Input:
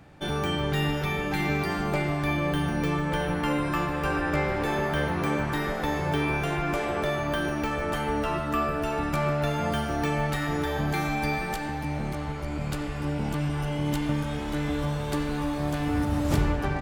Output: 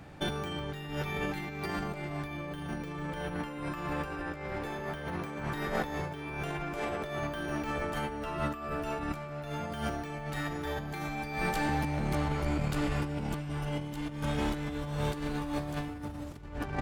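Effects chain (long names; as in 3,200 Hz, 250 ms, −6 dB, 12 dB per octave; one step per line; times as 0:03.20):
compressor whose output falls as the input rises −31 dBFS, ratio −0.5
level −2.5 dB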